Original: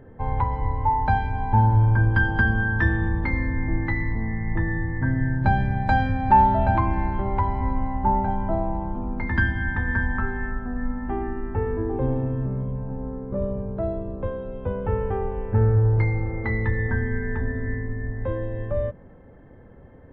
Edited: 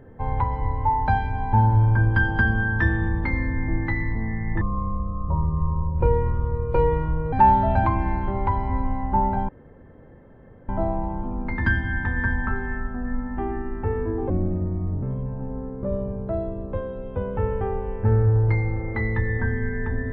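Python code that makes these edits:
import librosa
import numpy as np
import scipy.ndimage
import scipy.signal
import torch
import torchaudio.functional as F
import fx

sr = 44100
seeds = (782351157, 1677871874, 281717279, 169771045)

y = fx.edit(x, sr, fx.speed_span(start_s=4.61, length_s=1.63, speed=0.6),
    fx.insert_room_tone(at_s=8.4, length_s=1.2),
    fx.speed_span(start_s=12.01, length_s=0.51, speed=0.7), tone=tone)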